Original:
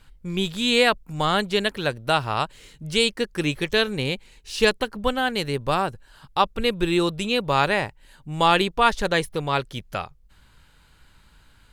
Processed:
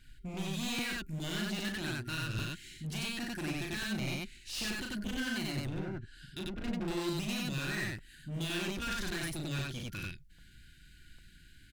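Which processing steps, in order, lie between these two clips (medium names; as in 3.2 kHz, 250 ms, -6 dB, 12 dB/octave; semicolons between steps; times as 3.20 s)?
5.58–6.88 s: low-pass that closes with the level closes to 500 Hz, closed at -16 dBFS; FFT band-reject 390–1400 Hz; peak limiter -15.5 dBFS, peak gain reduction 9.5 dB; saturation -21.5 dBFS, distortion -15 dB; vibrato 3.7 Hz 11 cents; hard clipper -31.5 dBFS, distortion -9 dB; on a send: loudspeakers at several distances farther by 13 m -4 dB, 32 m 0 dB; on the sum: crackling interface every 0.80 s, samples 256, repeat, from 0.78 s; trim -5.5 dB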